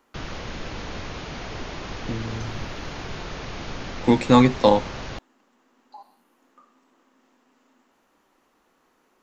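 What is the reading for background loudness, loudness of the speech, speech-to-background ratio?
−35.0 LKFS, −20.5 LKFS, 14.5 dB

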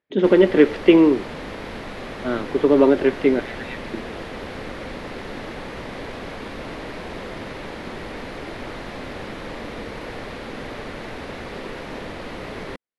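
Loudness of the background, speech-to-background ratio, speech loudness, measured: −33.5 LKFS, 16.0 dB, −17.5 LKFS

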